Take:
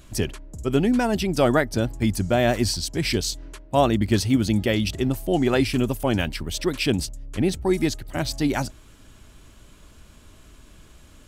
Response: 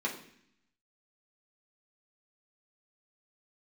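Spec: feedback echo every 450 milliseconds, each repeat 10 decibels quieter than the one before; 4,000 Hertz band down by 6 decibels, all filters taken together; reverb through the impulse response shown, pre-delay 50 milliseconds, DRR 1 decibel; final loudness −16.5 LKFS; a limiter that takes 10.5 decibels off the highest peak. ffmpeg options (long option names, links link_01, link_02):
-filter_complex "[0:a]equalizer=frequency=4000:width_type=o:gain=-8,alimiter=limit=-17.5dB:level=0:latency=1,aecho=1:1:450|900|1350|1800:0.316|0.101|0.0324|0.0104,asplit=2[link_01][link_02];[1:a]atrim=start_sample=2205,adelay=50[link_03];[link_02][link_03]afir=irnorm=-1:irlink=0,volume=-6.5dB[link_04];[link_01][link_04]amix=inputs=2:normalize=0,volume=8.5dB"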